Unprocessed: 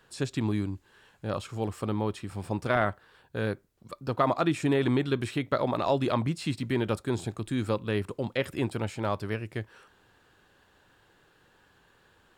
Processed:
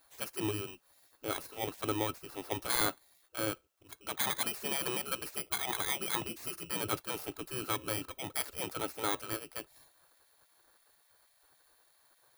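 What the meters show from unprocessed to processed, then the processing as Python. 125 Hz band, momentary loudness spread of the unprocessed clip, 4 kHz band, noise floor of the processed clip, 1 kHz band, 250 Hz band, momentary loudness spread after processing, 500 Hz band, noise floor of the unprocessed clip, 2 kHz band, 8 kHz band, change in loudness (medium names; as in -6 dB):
-15.0 dB, 12 LU, +2.5 dB, -70 dBFS, -6.5 dB, -12.0 dB, 12 LU, -10.5 dB, -64 dBFS, -3.5 dB, +9.5 dB, -5.0 dB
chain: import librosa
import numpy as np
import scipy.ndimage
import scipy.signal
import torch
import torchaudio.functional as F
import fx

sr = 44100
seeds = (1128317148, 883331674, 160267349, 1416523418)

y = fx.bit_reversed(x, sr, seeds[0], block=16)
y = fx.small_body(y, sr, hz=(210.0, 1300.0, 2700.0), ring_ms=65, db=15)
y = fx.spec_gate(y, sr, threshold_db=-15, keep='weak')
y = y * 10.0 ** (-1.0 / 20.0)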